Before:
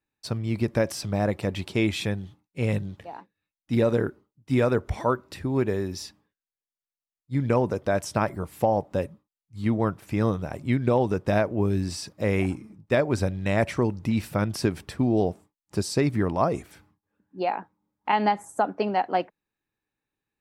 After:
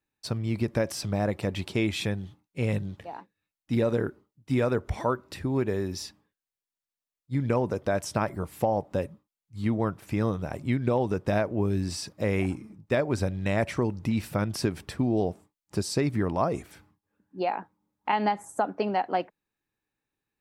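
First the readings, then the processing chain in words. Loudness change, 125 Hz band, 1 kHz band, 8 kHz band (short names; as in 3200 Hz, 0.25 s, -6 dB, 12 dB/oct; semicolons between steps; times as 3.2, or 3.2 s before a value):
-2.5 dB, -2.0 dB, -3.0 dB, -1.0 dB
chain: compressor 1.5:1, threshold -26 dBFS, peak gain reduction 3.5 dB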